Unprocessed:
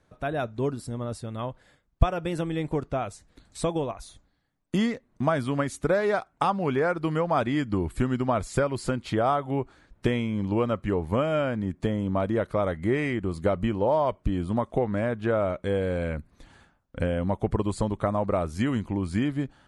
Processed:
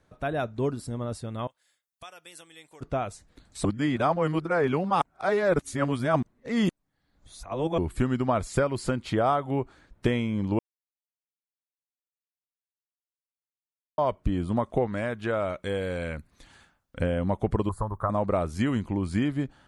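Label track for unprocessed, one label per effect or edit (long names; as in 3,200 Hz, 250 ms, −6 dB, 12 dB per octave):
1.470000	2.810000	first difference
3.650000	7.780000	reverse
10.590000	13.980000	silence
14.870000	17.000000	tilt shelving filter lows −4.5 dB, about 1,400 Hz
17.690000	18.100000	drawn EQ curve 100 Hz 0 dB, 240 Hz −13 dB, 780 Hz −2 dB, 1,100 Hz +6 dB, 1,700 Hz −4 dB, 2,500 Hz −28 dB, 5,300 Hz −17 dB, 8,700 Hz −12 dB, 13,000 Hz +12 dB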